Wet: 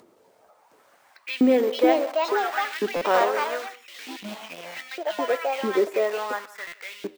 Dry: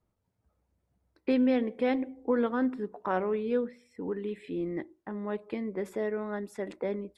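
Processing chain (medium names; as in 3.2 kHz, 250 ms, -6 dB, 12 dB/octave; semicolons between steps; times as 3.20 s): 2.65–3.23 s: formants flattened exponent 0.6; 4.13–5.29 s: Chebyshev band-stop 200–1800 Hz, order 3; in parallel at -11 dB: companded quantiser 2-bit; on the sum: LFO high-pass saw up 0.71 Hz 300–3000 Hz; flange 1.6 Hz, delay 9.1 ms, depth 2.5 ms, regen -87%; upward compressor, threshold -48 dBFS; on a send: delay 167 ms -20 dB; on the sum: ever faster or slower copies 715 ms, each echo +4 st, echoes 2; careless resampling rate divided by 2×, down filtered, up hold; buffer glitch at 2.96/6.67 s, samples 256, times 8; trim +7.5 dB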